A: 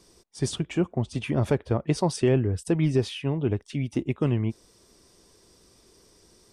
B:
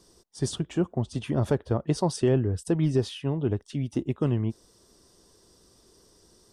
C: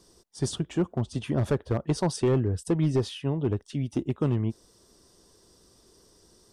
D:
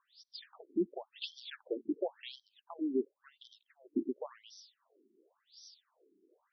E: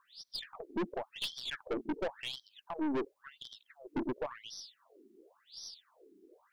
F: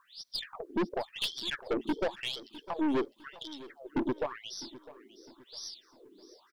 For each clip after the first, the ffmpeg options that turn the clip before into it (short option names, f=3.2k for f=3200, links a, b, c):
-af "equalizer=f=2.3k:t=o:w=0.41:g=-9.5,volume=-1dB"
-af "volume=17.5dB,asoftclip=hard,volume=-17.5dB"
-af "aexciter=amount=4.8:drive=5.8:freq=3.4k,afftfilt=real='re*between(b*sr/1024,280*pow(4400/280,0.5+0.5*sin(2*PI*0.93*pts/sr))/1.41,280*pow(4400/280,0.5+0.5*sin(2*PI*0.93*pts/sr))*1.41)':imag='im*between(b*sr/1024,280*pow(4400/280,0.5+0.5*sin(2*PI*0.93*pts/sr))/1.41,280*pow(4400/280,0.5+0.5*sin(2*PI*0.93*pts/sr))*1.41)':win_size=1024:overlap=0.75,volume=-4dB"
-af "aeval=exprs='(tanh(100*val(0)+0.3)-tanh(0.3))/100':c=same,volume=9.5dB"
-af "aecho=1:1:655|1310|1965:0.126|0.0491|0.0191,volume=4.5dB"